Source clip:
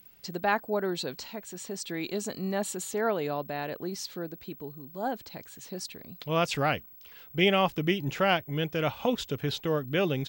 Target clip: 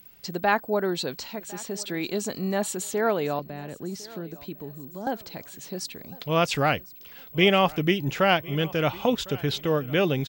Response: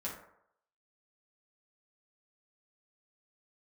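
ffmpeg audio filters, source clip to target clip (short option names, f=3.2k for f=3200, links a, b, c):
-filter_complex "[0:a]asettb=1/sr,asplit=3[a][b][c];[a]atrim=end=3.394[d];[b]atrim=start=3.39:end=5.07,asetpts=PTS-STARTPTS,afade=t=in:d=0.004:c=qsin,afade=t=out:st=1.676:d=0.004:c=qsin,acrossover=split=300[e][f];[f]acompressor=threshold=-42dB:ratio=10[g];[e][g]amix=inputs=2:normalize=0[h];[c]atrim=start=5.066[i];[d][h]acrossfade=d=0.004:c1=hsin:c2=qsin[j];[j][i]acrossfade=d=0.004:c1=qsin:c2=hsin,asplit=2[k][l];[l]aecho=0:1:1055|2110|3165:0.0841|0.0303|0.0109[m];[k][m]amix=inputs=2:normalize=0,volume=4dB"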